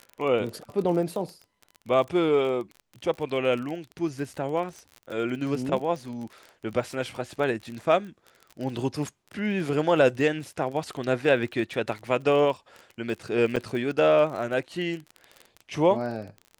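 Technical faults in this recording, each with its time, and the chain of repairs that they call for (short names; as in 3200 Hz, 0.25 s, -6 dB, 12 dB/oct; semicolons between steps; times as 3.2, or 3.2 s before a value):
crackle 29/s -33 dBFS
13.56–13.57 gap 6.3 ms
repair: de-click; interpolate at 13.56, 6.3 ms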